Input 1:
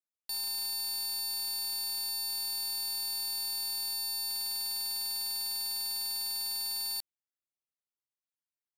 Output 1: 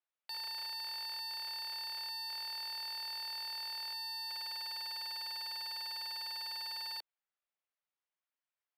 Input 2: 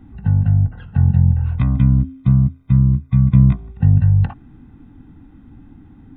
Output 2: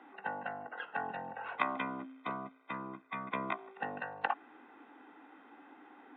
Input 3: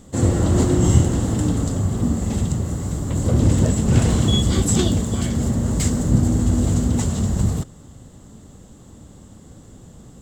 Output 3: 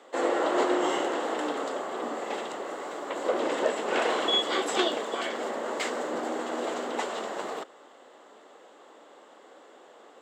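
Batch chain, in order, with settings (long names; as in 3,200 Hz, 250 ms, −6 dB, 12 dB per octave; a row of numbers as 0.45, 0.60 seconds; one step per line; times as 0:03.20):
high-pass filter 310 Hz 24 dB per octave
three-way crossover with the lows and the highs turned down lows −21 dB, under 440 Hz, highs −23 dB, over 3,400 Hz
level +5 dB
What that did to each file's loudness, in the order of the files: −7.0, −23.5, −10.0 LU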